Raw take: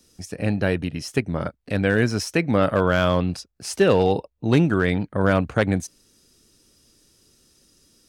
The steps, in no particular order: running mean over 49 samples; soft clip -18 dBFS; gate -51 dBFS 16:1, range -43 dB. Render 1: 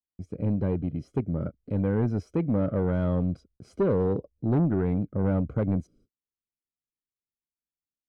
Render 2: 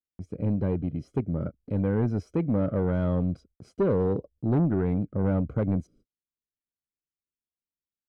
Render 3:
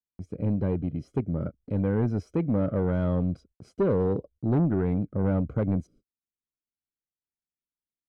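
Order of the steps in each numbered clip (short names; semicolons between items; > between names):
gate > running mean > soft clip; running mean > gate > soft clip; running mean > soft clip > gate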